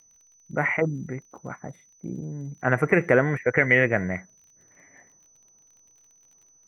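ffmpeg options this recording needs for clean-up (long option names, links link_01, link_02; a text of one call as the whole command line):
ffmpeg -i in.wav -af "adeclick=threshold=4,bandreject=frequency=6000:width=30" out.wav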